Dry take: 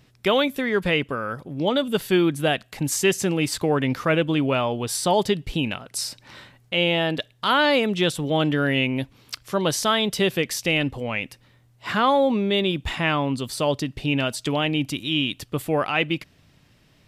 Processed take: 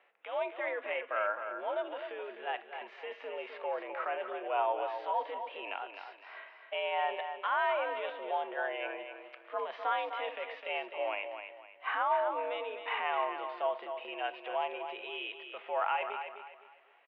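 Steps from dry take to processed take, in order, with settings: compressor with a negative ratio -23 dBFS, ratio -0.5; harmonic-percussive split percussive -14 dB; peak limiter -22.5 dBFS, peak gain reduction 10 dB; mistuned SSB +80 Hz 460–2600 Hz; on a send at -16.5 dB: reverberation RT60 0.45 s, pre-delay 6 ms; on the sum: dynamic bell 940 Hz, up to +7 dB, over -52 dBFS, Q 3.1; feedback delay 256 ms, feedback 32%, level -8 dB

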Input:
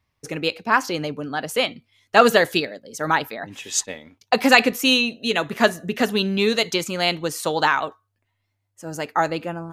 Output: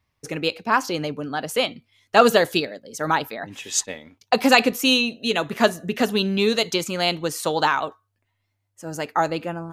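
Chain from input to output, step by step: dynamic bell 1.9 kHz, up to -5 dB, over -32 dBFS, Q 2.1

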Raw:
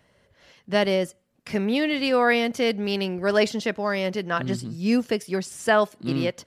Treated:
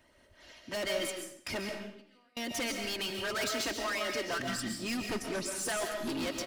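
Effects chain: 4.35–4.64 s: spectral selection erased 320–1100 Hz; 5.01–5.46 s: tilt EQ -2.5 dB/octave; harmonic-percussive split harmonic -15 dB; treble shelf 5.3 kHz +3 dB; comb 3.2 ms, depth 50%; 1.69–2.37 s: compressor with a negative ratio -58 dBFS, ratio -0.5; hard clipper -34 dBFS, distortion -3 dB; 3.10–4.28 s: frequency shift +20 Hz; reverberation RT60 0.65 s, pre-delay 95 ms, DRR 3 dB; trim +1.5 dB

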